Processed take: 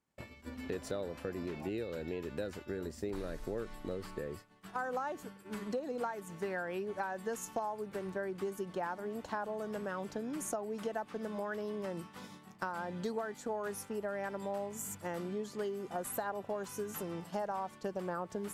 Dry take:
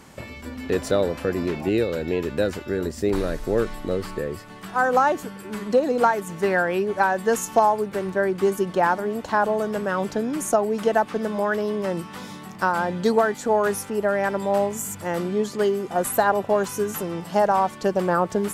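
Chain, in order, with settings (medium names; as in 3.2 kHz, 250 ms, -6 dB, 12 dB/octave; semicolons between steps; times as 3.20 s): expander -29 dBFS; compression 3:1, threshold -34 dBFS, peak gain reduction 16 dB; trim -5 dB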